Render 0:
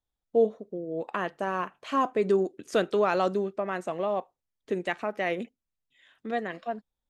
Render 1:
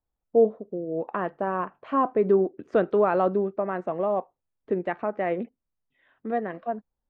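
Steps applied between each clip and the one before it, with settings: low-pass 1.3 kHz 12 dB/octave; trim +3.5 dB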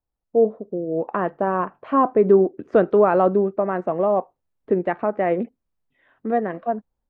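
treble shelf 2.6 kHz -9 dB; level rider gain up to 6.5 dB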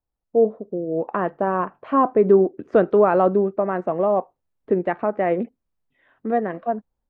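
no audible change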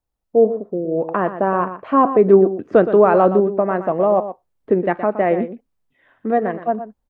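delay 119 ms -11.5 dB; trim +3.5 dB

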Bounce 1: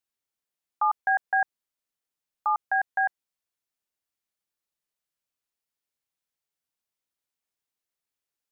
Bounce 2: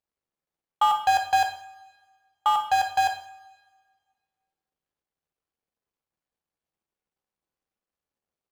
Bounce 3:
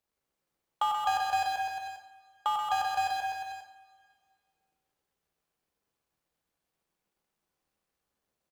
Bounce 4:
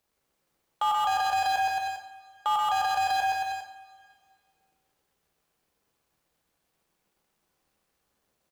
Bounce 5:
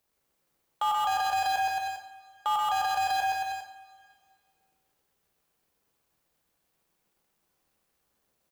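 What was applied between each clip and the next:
median filter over 25 samples; two-slope reverb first 0.53 s, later 1.8 s, from -21 dB, DRR 3.5 dB; trim +6.5 dB
bouncing-ball echo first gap 130 ms, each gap 0.9×, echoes 5; three bands compressed up and down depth 40%; trim -8 dB
peak limiter -26.5 dBFS, peak gain reduction 9 dB; trim +8 dB
treble shelf 11 kHz +6 dB; trim -1.5 dB

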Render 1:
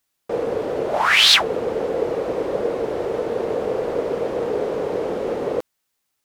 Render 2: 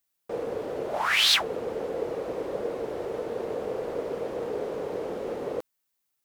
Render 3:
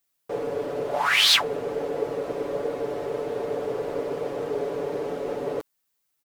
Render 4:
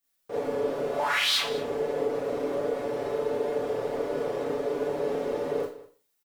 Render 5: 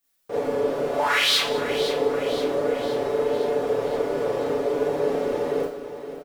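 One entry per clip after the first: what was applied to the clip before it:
treble shelf 11 kHz +8.5 dB; trim -8.5 dB
comb 7 ms; trim +1.5 dB
compression 3:1, threshold -25 dBFS, peak gain reduction 9 dB; delay 199 ms -18.5 dB; Schroeder reverb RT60 0.38 s, combs from 26 ms, DRR -6.5 dB; trim -6.5 dB
feedback delay 517 ms, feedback 56%, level -11.5 dB; trim +4.5 dB

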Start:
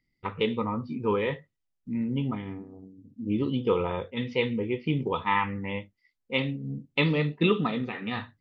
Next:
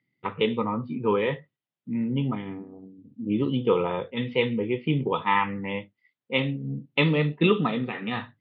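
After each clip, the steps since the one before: elliptic band-pass 120–3500 Hz; trim +3 dB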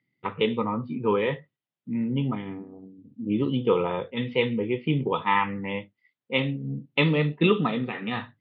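no audible change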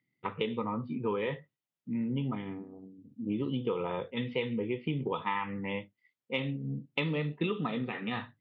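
compression, threshold -24 dBFS, peak gain reduction 9 dB; trim -4 dB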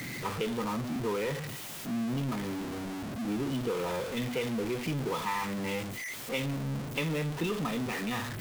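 jump at every zero crossing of -28 dBFS; trim -4 dB

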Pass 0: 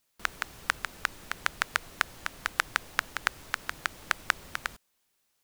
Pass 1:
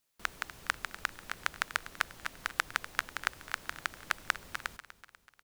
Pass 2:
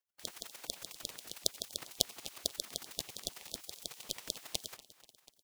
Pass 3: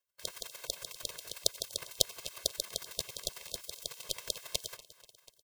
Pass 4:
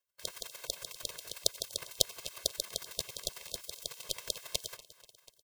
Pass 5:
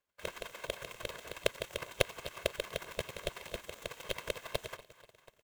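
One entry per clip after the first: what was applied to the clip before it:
feedback delay 245 ms, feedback 52%, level -15 dB; trim -4 dB
spectral gate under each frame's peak -15 dB weak; square tremolo 11 Hz, depth 65%, duty 15%; trim +11.5 dB
comb 1.9 ms, depth 98%
no audible change
median filter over 9 samples; trim +6.5 dB

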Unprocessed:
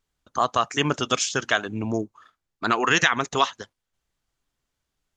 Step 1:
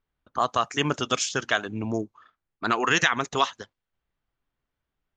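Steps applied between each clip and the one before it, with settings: level-controlled noise filter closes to 2.6 kHz, open at -18 dBFS; trim -2 dB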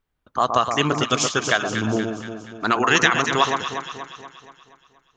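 echo whose repeats swap between lows and highs 119 ms, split 1.2 kHz, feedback 72%, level -4.5 dB; trim +4 dB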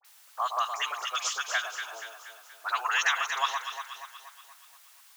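word length cut 8-bit, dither triangular; inverse Chebyshev high-pass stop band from 230 Hz, stop band 60 dB; phase dispersion highs, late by 49 ms, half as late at 1.6 kHz; trim -8 dB

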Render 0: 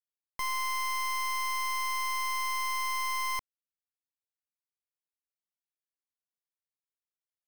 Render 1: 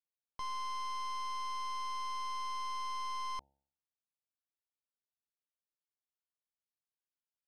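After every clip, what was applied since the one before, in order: low-pass 4.5 kHz 12 dB/octave; peaking EQ 2 kHz -14.5 dB 0.32 oct; de-hum 68.73 Hz, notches 13; trim -5 dB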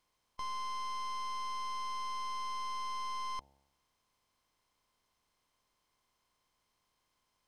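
spectral levelling over time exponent 0.6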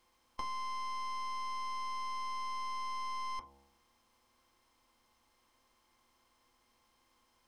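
compression 6:1, threshold -44 dBFS, peak gain reduction 8 dB; on a send at -1 dB: reverberation RT60 0.25 s, pre-delay 3 ms; on the sum: trim +5 dB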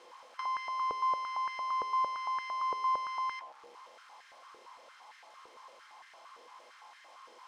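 jump at every zero crossing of -52.5 dBFS; distance through air 81 m; step-sequenced high-pass 8.8 Hz 460–1700 Hz

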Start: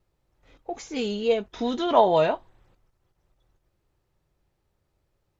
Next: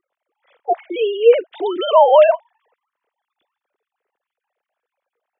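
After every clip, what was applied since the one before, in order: formants replaced by sine waves; loudness maximiser +12.5 dB; trim -1 dB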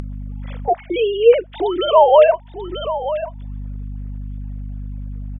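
hum 50 Hz, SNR 25 dB; delay 938 ms -16.5 dB; upward compressor, threshold -15 dBFS

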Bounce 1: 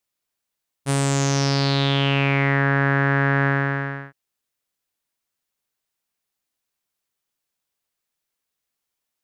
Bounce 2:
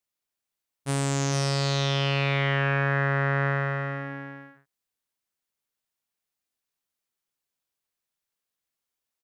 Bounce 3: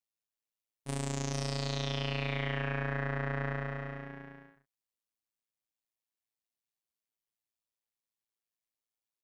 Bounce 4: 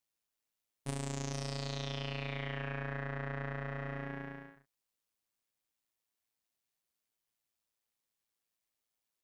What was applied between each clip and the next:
multi-tap echo 431/453/536 ms -18.5/-8/-16 dB; trim -5.5 dB
peaking EQ 1.4 kHz -5.5 dB 0.4 oct; AM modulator 110 Hz, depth 60%; trim -5.5 dB
compression 10:1, threshold -39 dBFS, peak gain reduction 10.5 dB; trim +4.5 dB

